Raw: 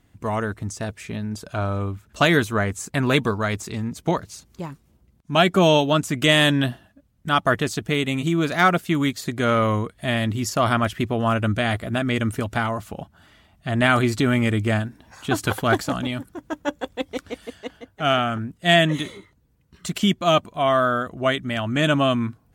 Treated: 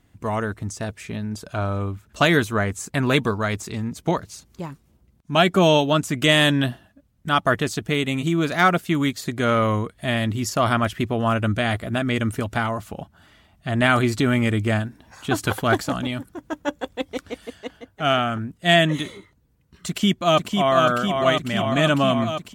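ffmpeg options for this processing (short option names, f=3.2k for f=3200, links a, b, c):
-filter_complex "[0:a]asplit=2[a][b];[b]afade=t=in:st=19.87:d=0.01,afade=t=out:st=20.74:d=0.01,aecho=0:1:500|1000|1500|2000|2500|3000|3500|4000|4500|5000|5500|6000:0.595662|0.47653|0.381224|0.304979|0.243983|0.195187|0.156149|0.124919|0.0999355|0.0799484|0.0639587|0.051167[c];[a][c]amix=inputs=2:normalize=0"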